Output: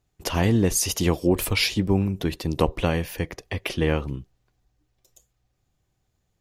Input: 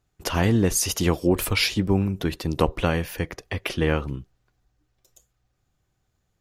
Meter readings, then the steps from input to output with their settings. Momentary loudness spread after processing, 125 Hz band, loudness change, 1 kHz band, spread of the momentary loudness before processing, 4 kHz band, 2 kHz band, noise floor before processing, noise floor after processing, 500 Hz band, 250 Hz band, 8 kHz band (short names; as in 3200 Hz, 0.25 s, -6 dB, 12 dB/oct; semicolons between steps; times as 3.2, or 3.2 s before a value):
10 LU, 0.0 dB, 0.0 dB, -1.0 dB, 10 LU, 0.0 dB, -1.0 dB, -74 dBFS, -74 dBFS, 0.0 dB, 0.0 dB, 0.0 dB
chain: bell 1400 Hz -5 dB 0.52 oct